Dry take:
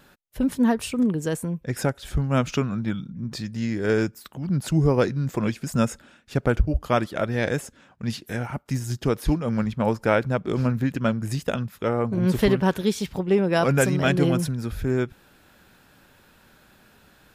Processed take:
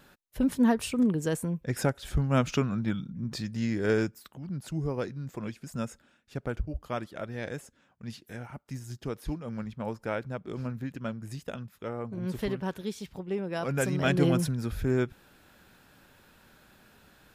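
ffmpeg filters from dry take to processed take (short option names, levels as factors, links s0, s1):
-af "volume=2,afade=t=out:st=3.81:d=0.73:silence=0.354813,afade=t=in:st=13.62:d=0.64:silence=0.354813"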